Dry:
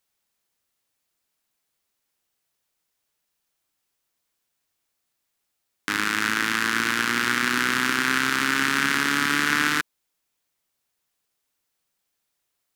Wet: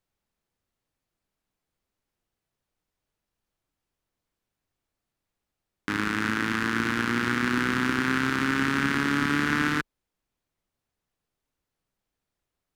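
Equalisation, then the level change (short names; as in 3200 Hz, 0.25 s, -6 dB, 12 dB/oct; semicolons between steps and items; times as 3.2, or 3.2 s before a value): tilt -3 dB/oct; -2.5 dB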